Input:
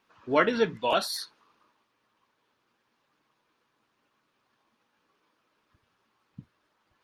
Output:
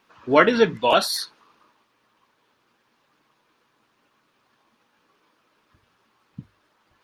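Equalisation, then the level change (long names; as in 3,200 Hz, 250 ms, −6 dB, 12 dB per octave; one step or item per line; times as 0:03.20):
mains-hum notches 50/100 Hz
+7.5 dB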